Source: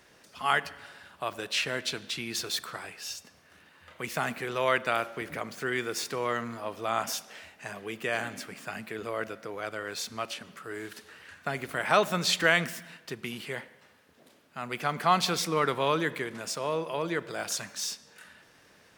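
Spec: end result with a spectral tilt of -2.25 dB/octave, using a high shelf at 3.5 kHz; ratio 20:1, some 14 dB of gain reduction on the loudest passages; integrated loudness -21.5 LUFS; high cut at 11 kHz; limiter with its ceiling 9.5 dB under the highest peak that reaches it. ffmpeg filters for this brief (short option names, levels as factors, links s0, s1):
-af "lowpass=11000,highshelf=f=3500:g=7.5,acompressor=threshold=0.0316:ratio=20,volume=5.96,alimiter=limit=0.355:level=0:latency=1"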